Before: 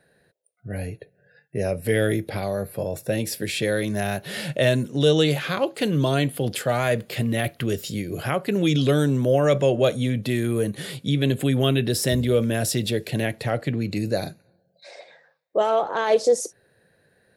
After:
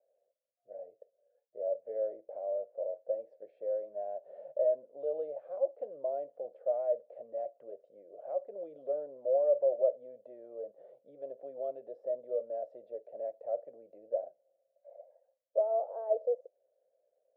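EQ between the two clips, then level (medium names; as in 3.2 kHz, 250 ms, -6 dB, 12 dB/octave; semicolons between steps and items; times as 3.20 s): Butterworth band-pass 590 Hz, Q 3.7; -5.5 dB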